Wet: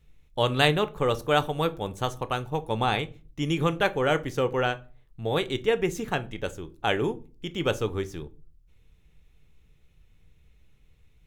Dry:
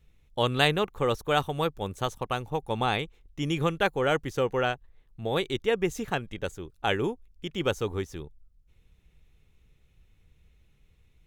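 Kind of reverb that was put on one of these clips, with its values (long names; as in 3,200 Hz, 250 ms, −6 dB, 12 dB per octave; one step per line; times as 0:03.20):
rectangular room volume 210 cubic metres, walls furnished, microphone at 0.4 metres
level +1 dB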